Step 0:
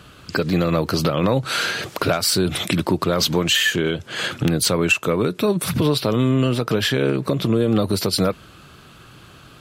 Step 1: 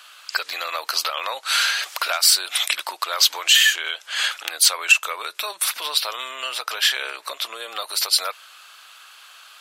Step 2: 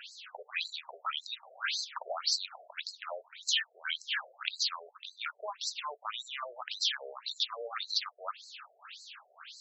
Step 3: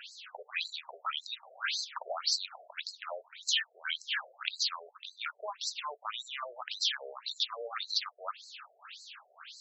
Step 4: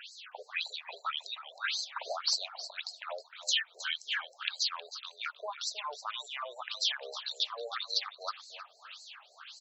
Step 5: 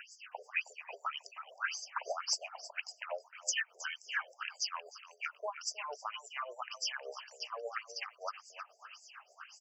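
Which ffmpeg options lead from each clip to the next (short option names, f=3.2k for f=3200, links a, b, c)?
-af "highpass=f=720:w=0.5412,highpass=f=720:w=1.3066,tiltshelf=f=1.2k:g=-5.5"
-af "acompressor=threshold=-30dB:ratio=3,afftfilt=real='re*between(b*sr/1024,510*pow(5700/510,0.5+0.5*sin(2*PI*1.8*pts/sr))/1.41,510*pow(5700/510,0.5+0.5*sin(2*PI*1.8*pts/sr))*1.41)':imag='im*between(b*sr/1024,510*pow(5700/510,0.5+0.5*sin(2*PI*1.8*pts/sr))/1.41,510*pow(5700/510,0.5+0.5*sin(2*PI*1.8*pts/sr))*1.41)':win_size=1024:overlap=0.75,volume=2dB"
-af anull
-af "aecho=1:1:316|632:0.224|0.0336"
-af "tremolo=f=8.6:d=0.64,asuperstop=centerf=3800:order=12:qfactor=2.1,volume=2dB"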